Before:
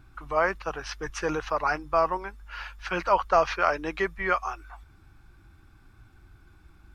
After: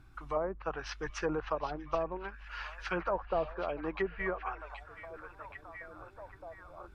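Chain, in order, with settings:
treble cut that deepens with the level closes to 520 Hz, closed at −22 dBFS
on a send: echo through a band-pass that steps 775 ms, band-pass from 3,200 Hz, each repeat −0.7 octaves, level −6 dB
on the sum: level −4 dB

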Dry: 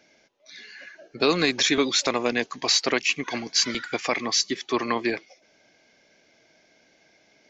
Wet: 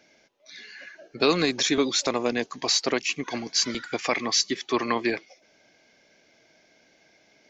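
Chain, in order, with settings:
0:01.41–0:03.99: dynamic equaliser 2,200 Hz, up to −5 dB, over −36 dBFS, Q 0.7

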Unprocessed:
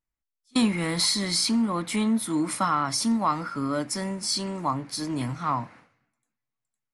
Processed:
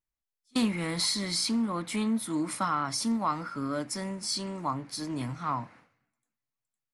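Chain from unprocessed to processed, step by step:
highs frequency-modulated by the lows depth 0.11 ms
level −4.5 dB

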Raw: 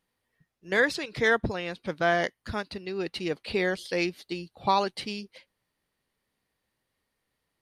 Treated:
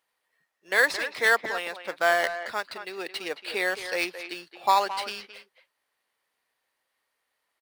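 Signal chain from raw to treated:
high-pass filter 690 Hz 12 dB per octave
in parallel at −8 dB: sample-rate reduction 6,100 Hz, jitter 0%
on the sum: far-end echo of a speakerphone 220 ms, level −10 dB
level +2 dB

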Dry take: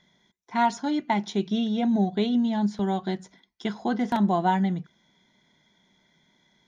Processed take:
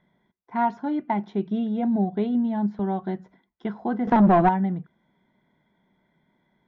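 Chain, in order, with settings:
0:04.07–0:04.49: leveller curve on the samples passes 3
low-pass filter 1,500 Hz 12 dB per octave

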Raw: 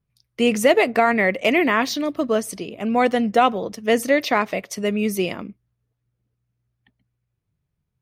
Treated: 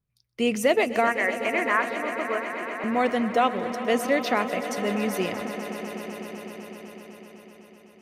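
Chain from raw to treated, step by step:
0:01.07–0:02.84: loudspeaker in its box 490–2,400 Hz, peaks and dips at 590 Hz −3 dB, 1,100 Hz +4 dB, 1,600 Hz +5 dB
echo that builds up and dies away 126 ms, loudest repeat 5, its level −15 dB
level −5.5 dB

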